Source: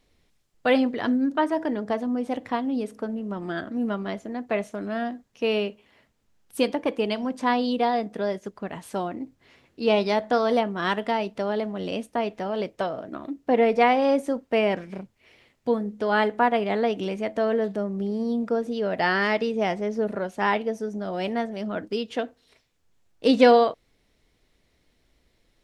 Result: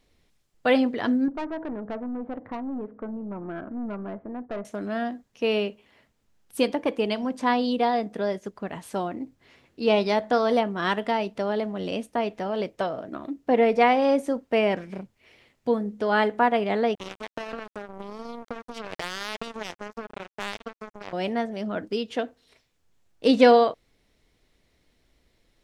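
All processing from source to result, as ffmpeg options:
ffmpeg -i in.wav -filter_complex "[0:a]asettb=1/sr,asplit=3[link_01][link_02][link_03];[link_01]atrim=end=1.284[link_04];[link_02]atrim=start=1.28:end=4.65,asetpts=PTS-STARTPTS,afade=type=in:duration=0.004:curve=qsin,afade=type=out:start_time=3.366:duration=0.004:curve=qsin,lowpass=frequency=1500:width=0.5412,lowpass=frequency=1500:width=1.3066,aeval=exprs='(tanh(15.8*val(0)+0.3)-tanh(0.3))/15.8':channel_layout=same,acompressor=threshold=-33dB:ratio=1.5:attack=3.2:release=140:knee=1:detection=peak[link_05];[link_03]atrim=start=4.646[link_06];[link_04][link_05]acrossfade=duration=0.004:curve1=hsin:curve2=qsin[link_07];[link_07][link_06]acrossfade=duration=0.004:curve1=qsin:curve2=hsin,asettb=1/sr,asplit=3[link_08][link_09][link_10];[link_08]atrim=end=16.954[link_11];[link_09]atrim=start=16.95:end=21.13,asetpts=PTS-STARTPTS,afade=type=in:duration=0.004:curve=qsin,afade=type=out:start_time=4.176:duration=0.004:curve=qsin,acompressor=threshold=-26dB:ratio=6:attack=3.2:release=140:knee=1:detection=peak,acrusher=bits=3:mix=0:aa=0.5[link_12];[link_10]atrim=start=21.126[link_13];[link_11][link_12]acrossfade=duration=0.004:curve1=hsin:curve2=qsin[link_14];[link_14][link_13]acrossfade=duration=0.004:curve1=qsin:curve2=hsin" out.wav

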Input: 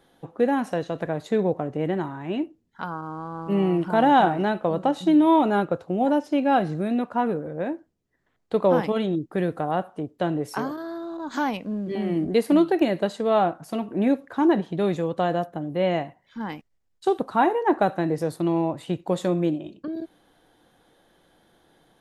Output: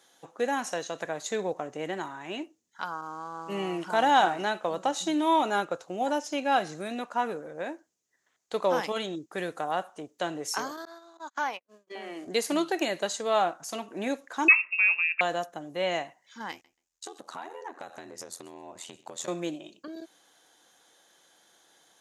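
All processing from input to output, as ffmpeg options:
ffmpeg -i in.wav -filter_complex "[0:a]asettb=1/sr,asplit=3[link_01][link_02][link_03];[link_01]atrim=end=10.854[link_04];[link_02]atrim=start=10.85:end=12.27,asetpts=PTS-STARTPTS,afade=type=in:duration=0.004:curve=qsin,afade=type=out:start_time=1.416:duration=0.004:curve=qsin,acrossover=split=2600[link_05][link_06];[link_06]acompressor=threshold=-55dB:ratio=4:attack=1:release=60[link_07];[link_05][link_07]amix=inputs=2:normalize=0,highpass=430,agate=range=-42dB:threshold=-37dB:ratio=16:release=100:detection=peak[link_08];[link_03]atrim=start=12.266[link_09];[link_04][link_08]acrossfade=duration=0.004:curve1=hsin:curve2=qsin[link_10];[link_10][link_09]acrossfade=duration=0.004:curve1=qsin:curve2=hsin,asettb=1/sr,asplit=3[link_11][link_12][link_13];[link_11]atrim=end=14.484[link_14];[link_12]atrim=start=14.48:end=15.21,asetpts=PTS-STARTPTS,afade=type=in:duration=0.004:curve=qsin,afade=type=out:start_time=0.726:duration=0.004:curve=qsin,equalizer=frequency=91:width=0.37:gain=-5.5,aecho=1:1:3.1:0.31,atrim=end_sample=32193,lowpass=frequency=2500:width_type=q:width=0.5098,lowpass=frequency=2500:width_type=q:width=0.6013,lowpass=frequency=2500:width_type=q:width=0.9,lowpass=frequency=2500:width_type=q:width=2.563,afreqshift=-2900[link_15];[link_13]atrim=start=15.206[link_16];[link_14][link_15]acrossfade=duration=0.004:curve1=hsin:curve2=qsin[link_17];[link_17][link_16]acrossfade=duration=0.004:curve1=qsin:curve2=hsin,asettb=1/sr,asplit=3[link_18][link_19][link_20];[link_18]atrim=end=16.514[link_21];[link_19]atrim=start=16.51:end=19.28,asetpts=PTS-STARTPTS,afade=type=in:duration=0.004:curve=qsin,afade=type=out:start_time=2.766:duration=0.004:curve=qsin,aeval=exprs='val(0)*sin(2*PI*42*n/s)':channel_layout=same,acompressor=threshold=-31dB:ratio=12:attack=3.2:release=140:knee=1:detection=peak,aecho=1:1:132|264:0.0891|0.0143,atrim=end_sample=122157[link_22];[link_20]atrim=start=19.276[link_23];[link_21][link_22]acrossfade=duration=0.004:curve1=hsin:curve2=qsin[link_24];[link_24][link_23]acrossfade=duration=0.004:curve1=qsin:curve2=hsin,highpass=frequency=1200:poles=1,equalizer=frequency=6600:width=1.8:gain=14.5,volume=1.5dB" out.wav

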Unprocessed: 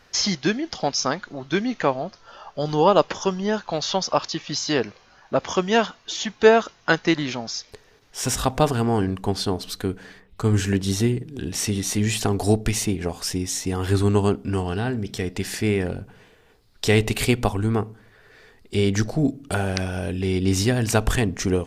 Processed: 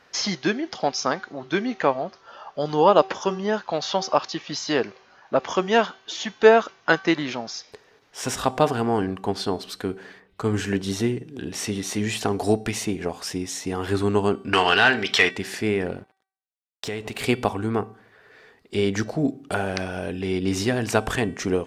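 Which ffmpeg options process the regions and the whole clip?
ffmpeg -i in.wav -filter_complex "[0:a]asettb=1/sr,asplit=3[link_01][link_02][link_03];[link_01]atrim=end=14.534[link_04];[link_02]atrim=start=14.53:end=15.31,asetpts=PTS-STARTPTS,afade=type=in:duration=0.004:curve=qsin,afade=type=out:start_time=0.776:duration=0.004:curve=qsin,equalizer=frequency=2800:width_type=o:width=2.8:gain=15,asplit=2[link_05][link_06];[link_06]highpass=frequency=720:poles=1,volume=13dB,asoftclip=type=tanh:threshold=-3dB[link_07];[link_05][link_07]amix=inputs=2:normalize=0,lowpass=frequency=5200:poles=1,volume=-6dB[link_08];[link_03]atrim=start=15.306[link_09];[link_04][link_08]acrossfade=duration=0.004:curve1=hsin:curve2=qsin[link_10];[link_10][link_09]acrossfade=duration=0.004:curve1=qsin:curve2=hsin,asettb=1/sr,asplit=3[link_11][link_12][link_13];[link_11]atrim=end=15.974[link_14];[link_12]atrim=start=15.97:end=17.24,asetpts=PTS-STARTPTS,afade=type=in:duration=0.004:curve=qsin,afade=type=out:start_time=1.266:duration=0.004:curve=qsin,aeval=exprs='sgn(val(0))*max(abs(val(0))-0.00794,0)':channel_layout=same,acompressor=threshold=-24dB:ratio=8:attack=3.2:release=140:knee=1:detection=peak[link_15];[link_13]atrim=start=17.236[link_16];[link_14][link_15]acrossfade=duration=0.004:curve1=hsin:curve2=qsin[link_17];[link_17][link_16]acrossfade=duration=0.004:curve1=qsin:curve2=hsin,highpass=frequency=300:poles=1,highshelf=frequency=4100:gain=-9.5,bandreject=frequency=383.9:width_type=h:width=4,bandreject=frequency=767.8:width_type=h:width=4,bandreject=frequency=1151.7:width_type=h:width=4,bandreject=frequency=1535.6:width_type=h:width=4,bandreject=frequency=1919.5:width_type=h:width=4,bandreject=frequency=2303.4:width_type=h:width=4,bandreject=frequency=2687.3:width_type=h:width=4,bandreject=frequency=3071.2:width_type=h:width=4,bandreject=frequency=3455.1:width_type=h:width=4,bandreject=frequency=3839:width_type=h:width=4,bandreject=frequency=4222.9:width_type=h:width=4,bandreject=frequency=4606.8:width_type=h:width=4,bandreject=frequency=4990.7:width_type=h:width=4,bandreject=frequency=5374.6:width_type=h:width=4,bandreject=frequency=5758.5:width_type=h:width=4,bandreject=frequency=6142.4:width_type=h:width=4,bandreject=frequency=6526.3:width_type=h:width=4,bandreject=frequency=6910.2:width_type=h:width=4,bandreject=frequency=7294.1:width_type=h:width=4,bandreject=frequency=7678:width_type=h:width=4,bandreject=frequency=8061.9:width_type=h:width=4,bandreject=frequency=8445.8:width_type=h:width=4,bandreject=frequency=8829.7:width_type=h:width=4,bandreject=frequency=9213.6:width_type=h:width=4,bandreject=frequency=9597.5:width_type=h:width=4,bandreject=frequency=9981.4:width_type=h:width=4,bandreject=frequency=10365.3:width_type=h:width=4,bandreject=frequency=10749.2:width_type=h:width=4,bandreject=frequency=11133.1:width_type=h:width=4,bandreject=frequency=11517:width_type=h:width=4,volume=2dB" out.wav

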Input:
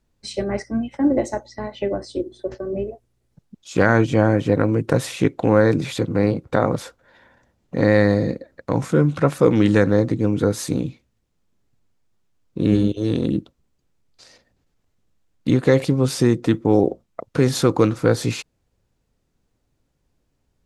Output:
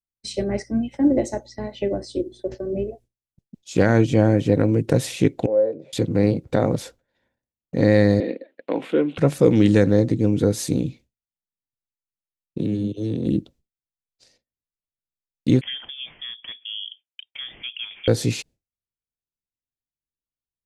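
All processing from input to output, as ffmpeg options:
ffmpeg -i in.wav -filter_complex "[0:a]asettb=1/sr,asplit=3[link_01][link_02][link_03];[link_01]atrim=end=5.464[link_04];[link_02]atrim=start=5.46:end=5.93,asetpts=PTS-STARTPTS,afade=type=in:duration=0.004:curve=qsin,afade=type=out:start_time=0.466:duration=0.004:curve=qsin,bandpass=frequency=560:width_type=q:width=5.4,asplit=2[link_05][link_06];[link_06]adelay=13,volume=-12dB[link_07];[link_05][link_07]amix=inputs=2:normalize=0,atrim=end_sample=20727[link_08];[link_03]atrim=start=5.926[link_09];[link_04][link_08]acrossfade=duration=0.004:curve1=hsin:curve2=qsin[link_10];[link_10][link_09]acrossfade=duration=0.004:curve1=qsin:curve2=hsin,asettb=1/sr,asplit=3[link_11][link_12][link_13];[link_11]atrim=end=8.204[link_14];[link_12]atrim=start=8.2:end=9.18,asetpts=PTS-STARTPTS,afade=type=in:duration=0.004:curve=qsin,afade=type=out:start_time=0.976:duration=0.004:curve=qsin,highpass=frequency=270:width=0.5412,highpass=frequency=270:width=1.3066,highshelf=frequency=4300:width_type=q:width=3:gain=-13[link_15];[link_13]atrim=start=9.176[link_16];[link_14][link_15]acrossfade=duration=0.004:curve1=hsin:curve2=qsin[link_17];[link_17][link_16]acrossfade=duration=0.004:curve1=qsin:curve2=hsin,asettb=1/sr,asplit=3[link_18][link_19][link_20];[link_18]atrim=end=12.584[link_21];[link_19]atrim=start=12.58:end=13.26,asetpts=PTS-STARTPTS,afade=type=in:duration=0.004:curve=qsin,afade=type=out:start_time=0.676:duration=0.004:curve=qsin,highpass=frequency=97:width=0.5412,highpass=frequency=97:width=1.3066,acrossover=split=220|1600[link_22][link_23][link_24];[link_22]acompressor=threshold=-26dB:ratio=4[link_25];[link_23]acompressor=threshold=-28dB:ratio=4[link_26];[link_24]acompressor=threshold=-50dB:ratio=4[link_27];[link_25][link_26][link_27]amix=inputs=3:normalize=0[link_28];[link_20]atrim=start=13.256[link_29];[link_21][link_28]acrossfade=duration=0.004:curve1=hsin:curve2=qsin[link_30];[link_30][link_29]acrossfade=duration=0.004:curve1=qsin:curve2=hsin,asettb=1/sr,asplit=3[link_31][link_32][link_33];[link_31]atrim=end=15.614[link_34];[link_32]atrim=start=15.61:end=18.08,asetpts=PTS-STARTPTS,afade=type=in:duration=0.004:curve=qsin,afade=type=out:start_time=2.466:duration=0.004:curve=qsin,highpass=610,acompressor=threshold=-34dB:ratio=2:attack=3.2:release=140:knee=1:detection=peak,lowpass=frequency=3100:width_type=q:width=0.5098,lowpass=frequency=3100:width_type=q:width=0.6013,lowpass=frequency=3100:width_type=q:width=0.9,lowpass=frequency=3100:width_type=q:width=2.563,afreqshift=-3700[link_35];[link_33]atrim=start=18.076[link_36];[link_34][link_35]acrossfade=duration=0.004:curve1=hsin:curve2=qsin[link_37];[link_37][link_36]acrossfade=duration=0.004:curve1=qsin:curve2=hsin,agate=range=-33dB:threshold=-41dB:ratio=3:detection=peak,equalizer=frequency=1200:width_type=o:width=1.1:gain=-11,volume=1dB" out.wav

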